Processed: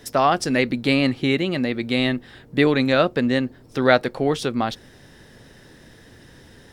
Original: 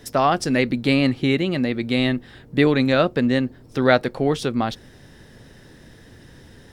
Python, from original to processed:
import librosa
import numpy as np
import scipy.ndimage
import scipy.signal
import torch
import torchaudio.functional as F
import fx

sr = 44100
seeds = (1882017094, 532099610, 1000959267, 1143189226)

y = fx.low_shelf(x, sr, hz=260.0, db=-4.5)
y = y * 10.0 ** (1.0 / 20.0)